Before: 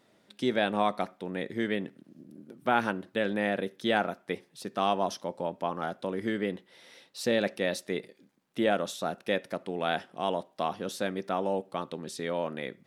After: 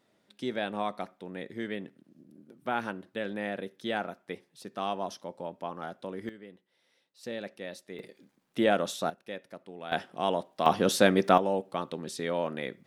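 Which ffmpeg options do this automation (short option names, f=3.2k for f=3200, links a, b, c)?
-af "asetnsamples=n=441:p=0,asendcmd='6.29 volume volume -17.5dB;7.23 volume volume -11dB;7.99 volume volume 1.5dB;9.1 volume volume -11dB;9.92 volume volume 1.5dB;10.66 volume volume 10dB;11.38 volume volume 1dB',volume=-5.5dB"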